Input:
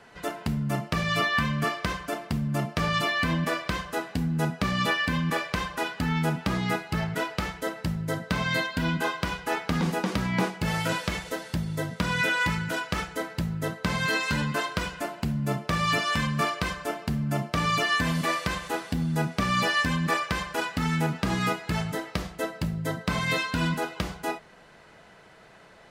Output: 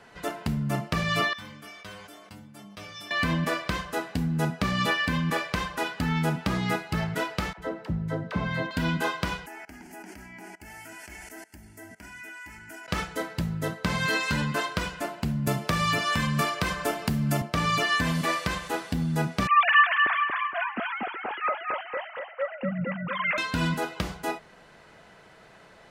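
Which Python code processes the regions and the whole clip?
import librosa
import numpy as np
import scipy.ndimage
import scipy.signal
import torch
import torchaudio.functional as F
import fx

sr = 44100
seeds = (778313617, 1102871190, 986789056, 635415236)

y = fx.chain(x, sr, fx.low_shelf(hz=370.0, db=-6.0),
    fx.stiff_resonator(f0_hz=100.0, decay_s=0.44, stiffness=0.002),
    fx.sustainer(db_per_s=31.0), at=(1.33, 3.11))
y = fx.chain(y, sr, fx.lowpass(hz=1100.0, slope=6),
    fx.dispersion(late='lows', ms=53.0, hz=520.0), at=(7.53, 8.71))
y = fx.chain(y, sr, fx.high_shelf(hz=3400.0, db=7.0),
    fx.level_steps(step_db=20),
    fx.fixed_phaser(hz=760.0, stages=8), at=(9.46, 12.88))
y = fx.chain(y, sr, fx.high_shelf(hz=11000.0, db=6.0),
    fx.band_squash(depth_pct=100), at=(15.47, 17.42))
y = fx.chain(y, sr, fx.sine_speech(),
    fx.echo_feedback(ms=234, feedback_pct=32, wet_db=-4.0), at=(19.47, 23.38))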